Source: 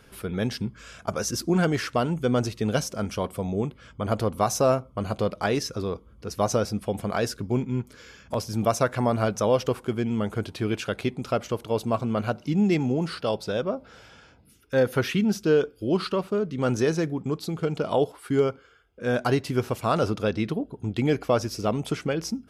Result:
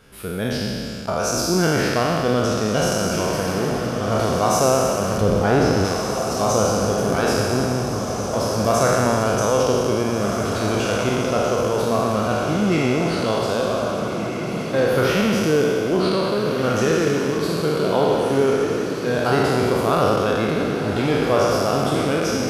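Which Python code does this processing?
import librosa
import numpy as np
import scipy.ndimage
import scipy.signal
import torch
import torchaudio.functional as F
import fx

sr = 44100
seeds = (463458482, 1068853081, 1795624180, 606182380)

p1 = fx.spec_trails(x, sr, decay_s=2.62)
p2 = fx.tilt_eq(p1, sr, slope=-2.5, at=(5.21, 5.85))
y = p2 + fx.echo_diffused(p2, sr, ms=1712, feedback_pct=57, wet_db=-6.5, dry=0)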